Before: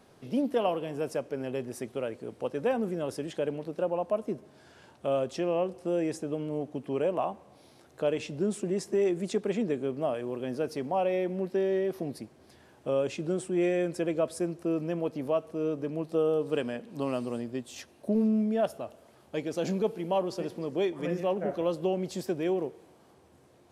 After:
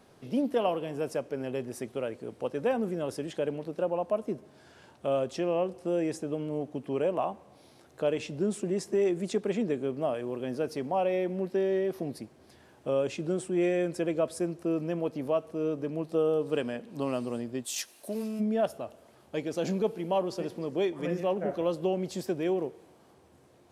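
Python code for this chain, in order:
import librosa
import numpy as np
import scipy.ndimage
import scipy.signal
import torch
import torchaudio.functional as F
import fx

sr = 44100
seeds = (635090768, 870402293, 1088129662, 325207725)

y = fx.tilt_eq(x, sr, slope=4.5, at=(17.64, 18.39), fade=0.02)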